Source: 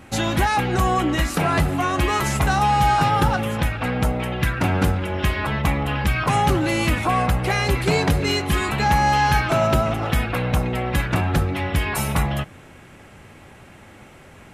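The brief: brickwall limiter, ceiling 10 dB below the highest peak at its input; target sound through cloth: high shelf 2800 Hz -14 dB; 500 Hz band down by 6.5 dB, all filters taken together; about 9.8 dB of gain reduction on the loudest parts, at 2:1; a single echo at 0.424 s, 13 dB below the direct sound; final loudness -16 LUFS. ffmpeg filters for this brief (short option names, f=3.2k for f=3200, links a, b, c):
-af "equalizer=f=500:t=o:g=-8.5,acompressor=threshold=-34dB:ratio=2,alimiter=level_in=0.5dB:limit=-24dB:level=0:latency=1,volume=-0.5dB,highshelf=f=2.8k:g=-14,aecho=1:1:424:0.224,volume=18.5dB"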